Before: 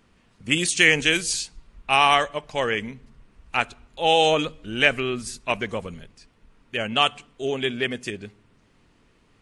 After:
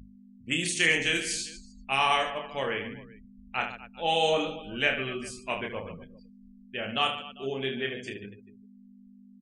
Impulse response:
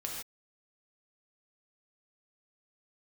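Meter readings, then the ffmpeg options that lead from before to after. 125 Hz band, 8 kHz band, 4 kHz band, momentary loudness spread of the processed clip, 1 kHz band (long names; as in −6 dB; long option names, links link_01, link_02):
−6.5 dB, −6.5 dB, −6.5 dB, 16 LU, −7.0 dB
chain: -filter_complex "[0:a]asplit=2[link_01][link_02];[link_02]aecho=0:1:30|75|142.5|243.8|395.6:0.631|0.398|0.251|0.158|0.1[link_03];[link_01][link_03]amix=inputs=2:normalize=0,afftdn=noise_reduction=32:noise_floor=-41,aeval=exprs='val(0)+0.0251*(sin(2*PI*50*n/s)+sin(2*PI*2*50*n/s)/2+sin(2*PI*3*50*n/s)/3+sin(2*PI*4*50*n/s)/4+sin(2*PI*5*50*n/s)/5)':channel_layout=same,bandreject=frequency=50:width_type=h:width=6,bandreject=frequency=100:width_type=h:width=6,bandreject=frequency=150:width_type=h:width=6,volume=-8.5dB"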